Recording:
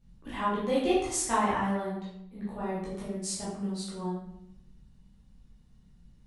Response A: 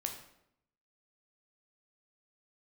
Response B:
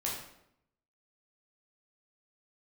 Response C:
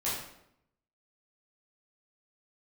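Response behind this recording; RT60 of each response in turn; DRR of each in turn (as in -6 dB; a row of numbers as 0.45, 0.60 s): C; 0.75, 0.75, 0.75 s; 3.0, -4.5, -9.5 dB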